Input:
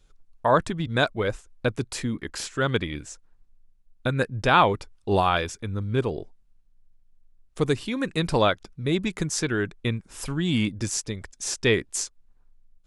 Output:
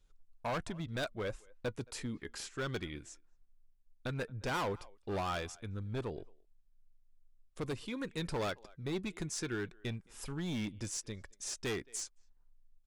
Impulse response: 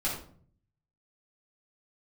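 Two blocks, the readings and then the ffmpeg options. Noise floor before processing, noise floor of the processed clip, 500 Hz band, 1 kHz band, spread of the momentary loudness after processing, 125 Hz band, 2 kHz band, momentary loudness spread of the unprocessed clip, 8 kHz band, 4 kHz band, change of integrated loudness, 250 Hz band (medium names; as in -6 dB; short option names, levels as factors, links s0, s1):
-60 dBFS, -67 dBFS, -14.0 dB, -16.5 dB, 8 LU, -13.0 dB, -14.5 dB, 10 LU, -11.0 dB, -13.5 dB, -14.0 dB, -13.0 dB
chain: -filter_complex "[0:a]asplit=2[s0][s1];[s1]adelay=220,highpass=300,lowpass=3400,asoftclip=type=hard:threshold=0.211,volume=0.0447[s2];[s0][s2]amix=inputs=2:normalize=0,volume=11.2,asoftclip=hard,volume=0.0891,flanger=delay=1:depth=1.9:regen=81:speed=0.16:shape=triangular,volume=0.473"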